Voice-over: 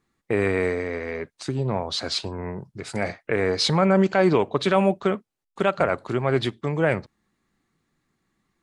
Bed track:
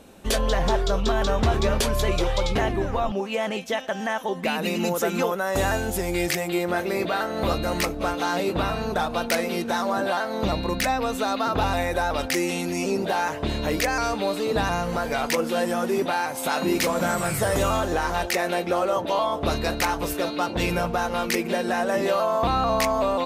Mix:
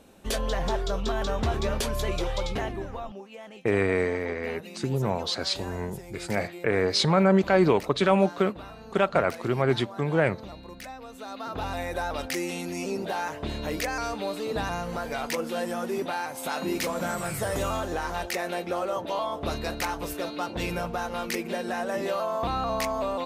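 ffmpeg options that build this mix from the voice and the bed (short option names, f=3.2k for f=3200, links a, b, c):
-filter_complex "[0:a]adelay=3350,volume=-1.5dB[a];[1:a]volume=6dB,afade=t=out:st=2.4:d=0.9:silence=0.251189,afade=t=in:st=11.12:d=0.86:silence=0.266073[b];[a][b]amix=inputs=2:normalize=0"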